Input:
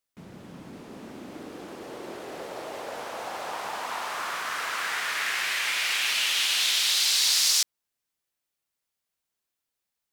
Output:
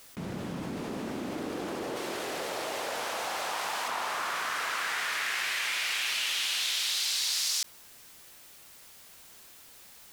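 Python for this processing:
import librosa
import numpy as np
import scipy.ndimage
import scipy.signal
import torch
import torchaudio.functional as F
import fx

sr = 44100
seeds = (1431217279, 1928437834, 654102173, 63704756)

y = fx.tilt_shelf(x, sr, db=-4.5, hz=1300.0, at=(1.96, 3.88))
y = fx.env_flatten(y, sr, amount_pct=70)
y = y * 10.0 ** (-8.0 / 20.0)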